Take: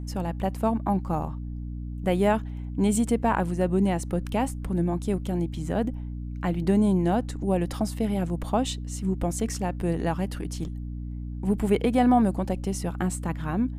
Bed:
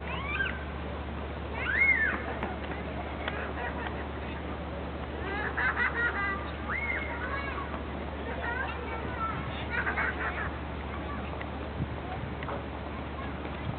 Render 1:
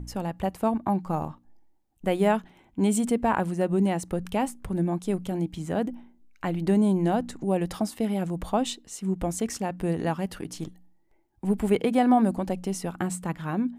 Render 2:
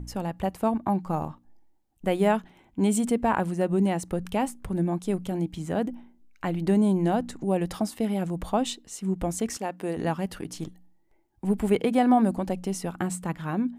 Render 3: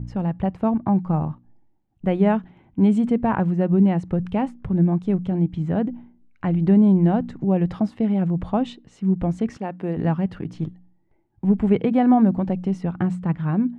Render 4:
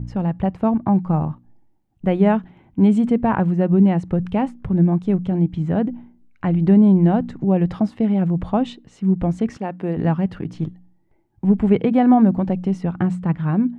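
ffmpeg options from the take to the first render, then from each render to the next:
-af "bandreject=f=60:t=h:w=4,bandreject=f=120:t=h:w=4,bandreject=f=180:t=h:w=4,bandreject=f=240:t=h:w=4,bandreject=f=300:t=h:w=4"
-filter_complex "[0:a]asettb=1/sr,asplit=3[s0][s1][s2];[s0]atrim=end=9.574[s3];[s1]atrim=start=9.57:end=9.97,asetpts=PTS-STARTPTS,afade=t=in:d=0.004:c=qsin,afade=t=out:st=0.396:d=0.004:c=qsin,highpass=280[s4];[s2]atrim=start=9.966[s5];[s3][s4]acrossfade=d=0.004:c1=hsin:c2=qsin[s6];[s6][s5]acrossfade=d=0.004:c1=qsin:c2=hsin"
-af "lowpass=2600,equalizer=f=130:t=o:w=1.6:g=12"
-af "volume=1.33"

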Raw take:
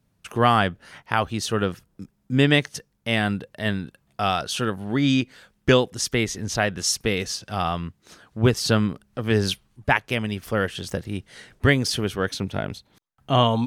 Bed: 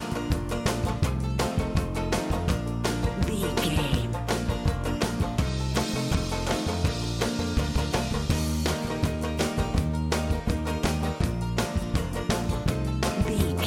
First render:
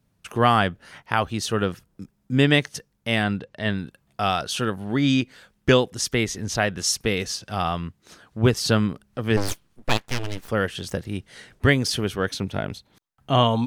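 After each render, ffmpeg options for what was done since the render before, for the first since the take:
-filter_complex "[0:a]asettb=1/sr,asplit=3[s0][s1][s2];[s0]atrim=end=3.234[s3];[s1]atrim=start=3.23:end=3.78,asetpts=PTS-STARTPTS,afade=t=in:d=0.004:c=qsin,afade=t=out:st=0.546:d=0.004:c=qsin,lowpass=6000[s4];[s2]atrim=start=3.776[s5];[s3][s4]acrossfade=d=0.004:c1=hsin:c2=qsin[s6];[s6][s5]acrossfade=d=0.004:c1=qsin:c2=hsin,asplit=3[s7][s8][s9];[s7]afade=t=out:st=9.36:d=0.02[s10];[s8]aeval=exprs='abs(val(0))':c=same,afade=t=in:st=9.36:d=0.02,afade=t=out:st=10.47:d=0.02[s11];[s9]afade=t=in:st=10.47:d=0.02[s12];[s10][s11][s12]amix=inputs=3:normalize=0"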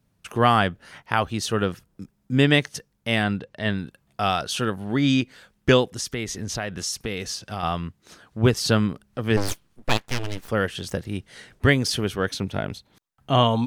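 -filter_complex "[0:a]asettb=1/sr,asplit=3[s0][s1][s2];[s0]atrim=end=5.934[s3];[s1]atrim=start=5.93:end=7.63,asetpts=PTS-STARTPTS,afade=t=in:d=0.004:c=qsin,afade=t=out:st=1.696:d=0.004:c=qsin,acompressor=threshold=0.0501:ratio=3:attack=3.2:release=140:knee=1:detection=peak[s4];[s2]atrim=start=7.626[s5];[s3][s4]acrossfade=d=0.004:c1=hsin:c2=qsin[s6];[s6][s5]acrossfade=d=0.004:c1=qsin:c2=hsin"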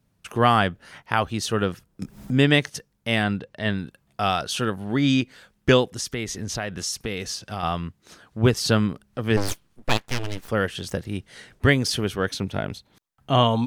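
-filter_complex "[0:a]asettb=1/sr,asplit=3[s0][s1][s2];[s0]atrim=end=2.024[s3];[s1]atrim=start=2.02:end=2.7,asetpts=PTS-STARTPTS,afade=t=in:d=0.004:c=qsin,afade=t=out:st=0.676:d=0.004:c=qsin,acompressor=mode=upward:threshold=0.112:ratio=2.5:attack=3.2:release=140:knee=2.83:detection=peak[s4];[s2]atrim=start=2.696[s5];[s3][s4]acrossfade=d=0.004:c1=hsin:c2=qsin[s6];[s6][s5]acrossfade=d=0.004:c1=qsin:c2=hsin"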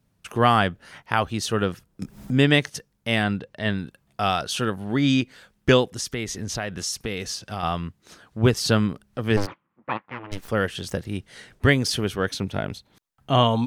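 -filter_complex "[0:a]asplit=3[s0][s1][s2];[s0]afade=t=out:st=9.45:d=0.02[s3];[s1]highpass=240,equalizer=f=270:t=q:w=4:g=-5,equalizer=f=420:t=q:w=4:g=-10,equalizer=f=670:t=q:w=4:g=-8,equalizer=f=1100:t=q:w=4:g=4,equalizer=f=1600:t=q:w=4:g=-5,lowpass=f=2000:w=0.5412,lowpass=f=2000:w=1.3066,afade=t=in:st=9.45:d=0.02,afade=t=out:st=10.31:d=0.02[s4];[s2]afade=t=in:st=10.31:d=0.02[s5];[s3][s4][s5]amix=inputs=3:normalize=0"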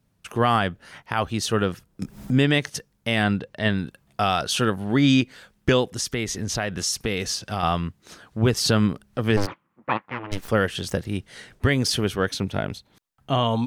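-af "dynaudnorm=f=190:g=11:m=1.68,alimiter=limit=0.355:level=0:latency=1:release=109"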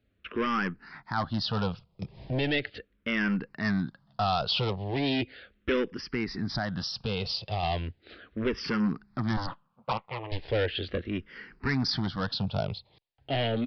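-filter_complex "[0:a]aresample=11025,volume=11.2,asoftclip=hard,volume=0.0891,aresample=44100,asplit=2[s0][s1];[s1]afreqshift=-0.37[s2];[s0][s2]amix=inputs=2:normalize=1"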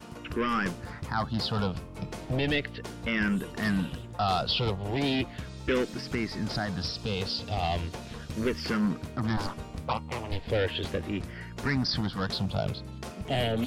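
-filter_complex "[1:a]volume=0.211[s0];[0:a][s0]amix=inputs=2:normalize=0"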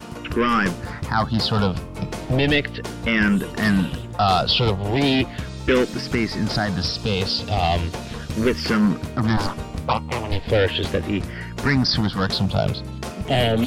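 -af "volume=2.82"

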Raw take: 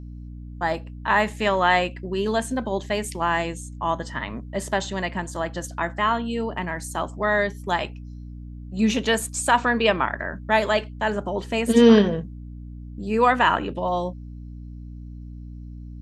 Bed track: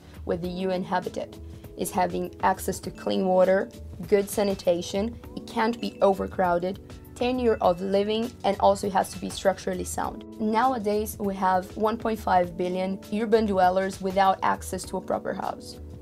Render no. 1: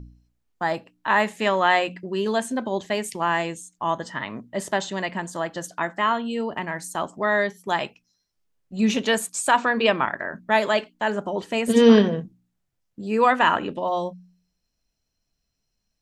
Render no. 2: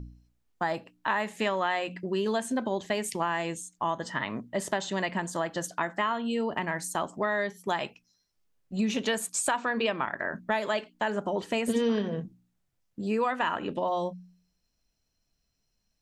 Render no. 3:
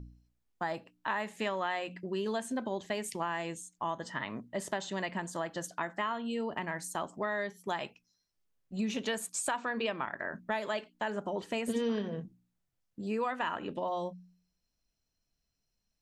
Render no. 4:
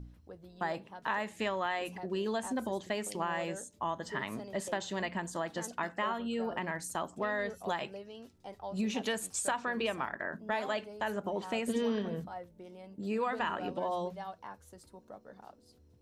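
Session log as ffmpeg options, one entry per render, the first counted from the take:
-af "bandreject=f=60:t=h:w=4,bandreject=f=120:t=h:w=4,bandreject=f=180:t=h:w=4,bandreject=f=240:t=h:w=4,bandreject=f=300:t=h:w=4"
-af "acompressor=threshold=0.0562:ratio=5"
-af "volume=0.531"
-filter_complex "[1:a]volume=0.075[s0];[0:a][s0]amix=inputs=2:normalize=0"

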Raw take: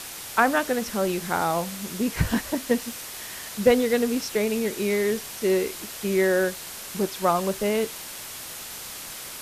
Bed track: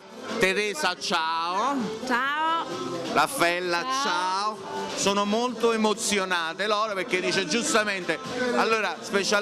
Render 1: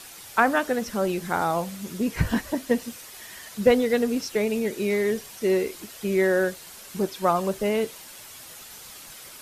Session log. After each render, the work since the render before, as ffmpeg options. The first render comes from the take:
-af "afftdn=nr=8:nf=-38"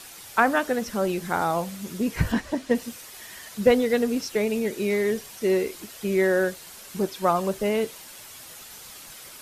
-filter_complex "[0:a]asettb=1/sr,asplit=3[s0][s1][s2];[s0]atrim=end=2.324[s3];[s1]atrim=start=2.32:end=2.75,asetpts=PTS-STARTPTS,afade=t=in:d=0.004:c=qsin,afade=t=out:st=0.426:d=0.004:c=qsin,adynamicsmooth=sensitivity=5:basefreq=7900[s4];[s2]atrim=start=2.746[s5];[s3][s4]acrossfade=d=0.004:c1=hsin:c2=qsin[s6];[s6][s5]acrossfade=d=0.004:c1=qsin:c2=hsin"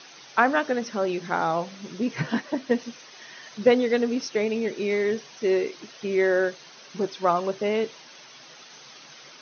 -af "afftfilt=real='re*between(b*sr/4096,120,6400)':imag='im*between(b*sr/4096,120,6400)':win_size=4096:overlap=0.75,equalizer=f=190:w=6.3:g=-7.5"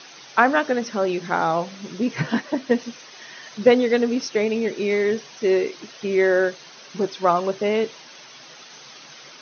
-af "volume=1.5"

